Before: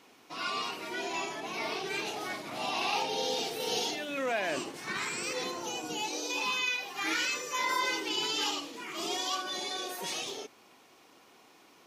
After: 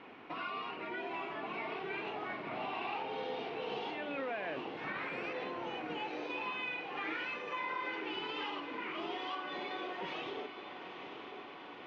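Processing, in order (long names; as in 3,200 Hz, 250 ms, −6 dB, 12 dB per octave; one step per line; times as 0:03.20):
low-pass filter 2,700 Hz 24 dB per octave
downward compressor 3 to 1, threshold −49 dBFS, peak gain reduction 16 dB
on a send: feedback delay with all-pass diffusion 907 ms, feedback 65%, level −9 dB
on the sum: level +7 dB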